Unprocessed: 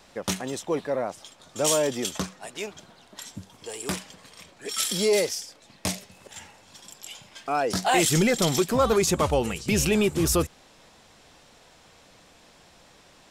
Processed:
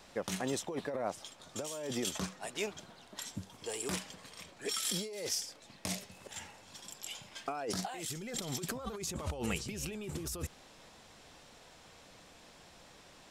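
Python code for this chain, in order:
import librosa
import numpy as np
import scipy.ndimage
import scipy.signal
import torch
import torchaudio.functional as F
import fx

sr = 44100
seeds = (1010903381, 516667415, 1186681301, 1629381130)

y = fx.over_compress(x, sr, threshold_db=-30.0, ratio=-1.0)
y = y * librosa.db_to_amplitude(-8.0)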